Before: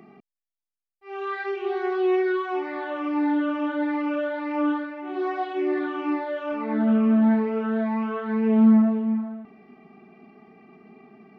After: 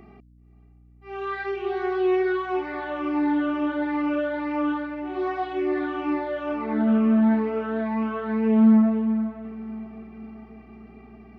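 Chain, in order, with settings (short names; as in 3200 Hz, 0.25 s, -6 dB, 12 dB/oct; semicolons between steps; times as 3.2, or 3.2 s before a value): hum 60 Hz, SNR 29 dB; diffused feedback echo 0.513 s, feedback 49%, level -15 dB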